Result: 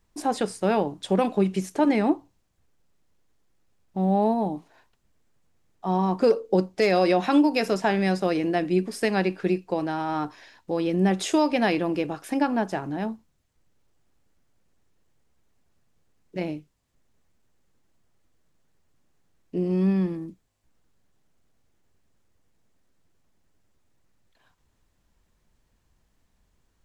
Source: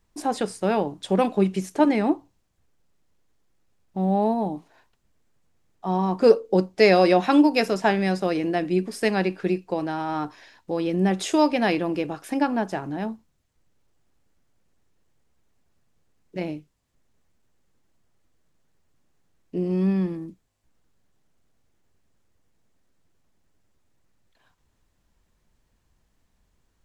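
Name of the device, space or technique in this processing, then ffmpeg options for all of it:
clipper into limiter: -af "asoftclip=type=hard:threshold=0.531,alimiter=limit=0.282:level=0:latency=1:release=76"

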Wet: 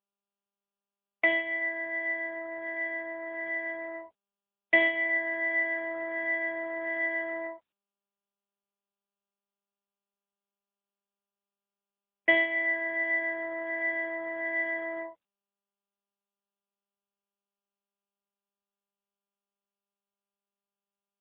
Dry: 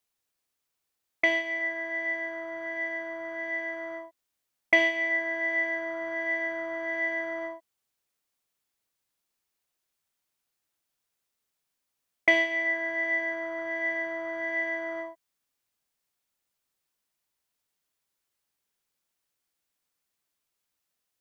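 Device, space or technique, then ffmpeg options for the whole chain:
mobile call with aggressive noise cancelling: -filter_complex "[0:a]asettb=1/sr,asplit=3[s0][s1][s2];[s0]atrim=end=12.414[s3];[s1]atrim=start=12.41:end=14.03,asetpts=PTS-STARTPTS,afade=t=in:d=0.004:c=qsin,afade=t=out:st=1.616:d=0.004:c=qsin,highpass=f=48:p=1[s4];[s2]atrim=start=14.026[s5];[s3][s4]acrossfade=d=0.004:c1=hsin:c2=qsin[s6];[s6][s5]acrossfade=d=0.004:c1=qsin:c2=hsin,highpass=110,afftdn=nr=21:nf=-50" -ar 8000 -c:a libopencore_amrnb -b:a 10200

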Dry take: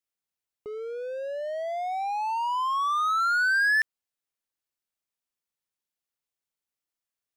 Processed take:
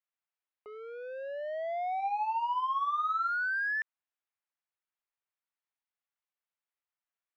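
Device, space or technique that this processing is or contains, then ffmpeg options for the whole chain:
DJ mixer with the lows and highs turned down: -filter_complex "[0:a]acrossover=split=580 3000:gain=0.0891 1 0.0794[s0][s1][s2];[s0][s1][s2]amix=inputs=3:normalize=0,alimiter=level_in=1.68:limit=0.0631:level=0:latency=1,volume=0.596,asettb=1/sr,asplit=3[s3][s4][s5];[s3]atrim=end=1.964[s6];[s4]atrim=start=1.96:end=3.29,asetpts=PTS-STARTPTS,afade=t=in:d=0.004:c=qsin,afade=t=out:st=1.326:d=0.004:c=qsin,asplit=2[s7][s8];[s8]adelay=33,volume=0.447[s9];[s7][s9]amix=inputs=2:normalize=0,atrim=end_sample=58653[s10];[s5]atrim=start=3.286[s11];[s6][s10]acrossfade=d=0.004:c1=hsin:c2=qsin[s12];[s12][s11]acrossfade=d=0.004:c1=qsin:c2=hsin"

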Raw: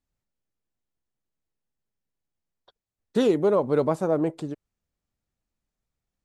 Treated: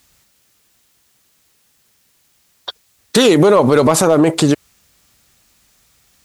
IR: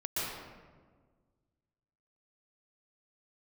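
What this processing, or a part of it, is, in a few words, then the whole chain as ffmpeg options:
mastering chain: -af "highpass=46,equalizer=f=1200:t=o:w=0.23:g=2,acompressor=threshold=0.0708:ratio=2,tiltshelf=f=1300:g=-7,asoftclip=type=hard:threshold=0.0891,alimiter=level_in=37.6:limit=0.891:release=50:level=0:latency=1,volume=0.794"

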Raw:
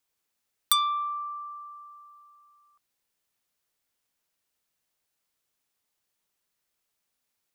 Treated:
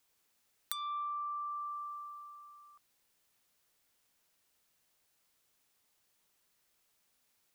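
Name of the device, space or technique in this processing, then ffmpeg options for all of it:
serial compression, leveller first: -af "acompressor=threshold=0.0316:ratio=2.5,acompressor=threshold=0.00708:ratio=5,volume=1.78"

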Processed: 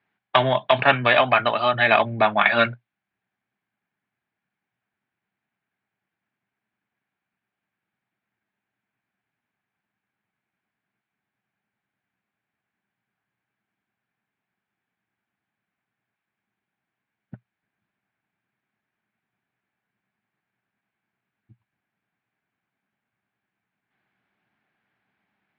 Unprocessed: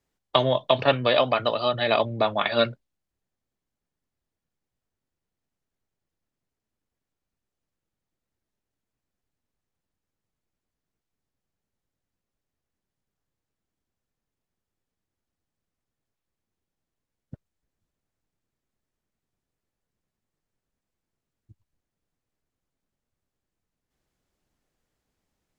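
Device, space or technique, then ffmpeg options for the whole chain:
overdrive pedal into a guitar cabinet: -filter_complex "[0:a]asplit=2[s0][s1];[s1]highpass=f=720:p=1,volume=3.98,asoftclip=type=tanh:threshold=0.708[s2];[s0][s2]amix=inputs=2:normalize=0,lowpass=f=2500:p=1,volume=0.501,highpass=110,equalizer=f=120:t=q:w=4:g=9,equalizer=f=200:t=q:w=4:g=9,equalizer=f=510:t=q:w=4:g=-9,equalizer=f=780:t=q:w=4:g=4,equalizer=f=1600:t=q:w=4:g=8,equalizer=f=2300:t=q:w=4:g=7,lowpass=f=3600:w=0.5412,lowpass=f=3600:w=1.3066"

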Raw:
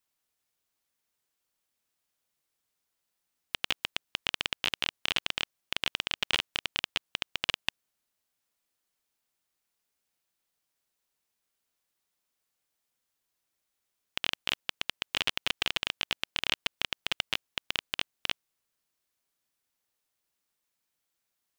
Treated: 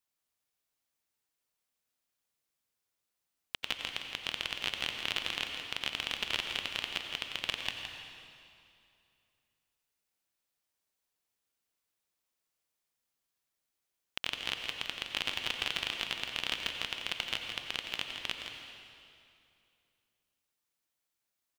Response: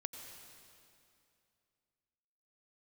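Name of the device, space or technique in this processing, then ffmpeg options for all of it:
cave: -filter_complex "[0:a]aecho=1:1:166:0.355[s0];[1:a]atrim=start_sample=2205[s1];[s0][s1]afir=irnorm=-1:irlink=0,volume=0.841"

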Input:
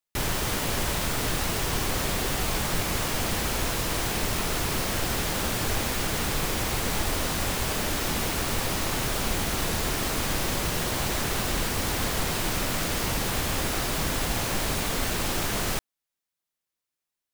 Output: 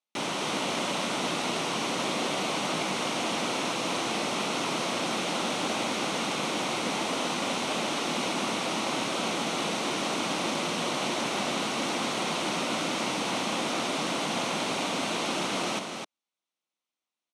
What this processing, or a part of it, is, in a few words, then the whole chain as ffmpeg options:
television speaker: -af "highpass=f=200:w=0.5412,highpass=f=200:w=1.3066,equalizer=f=420:t=q:w=4:g=-5,equalizer=f=1700:t=q:w=4:g=-10,equalizer=f=4900:t=q:w=4:g=-7,equalizer=f=7300:t=q:w=4:g=-8,lowpass=f=7700:w=0.5412,lowpass=f=7700:w=1.3066,aecho=1:1:255:0.531,volume=1.19"

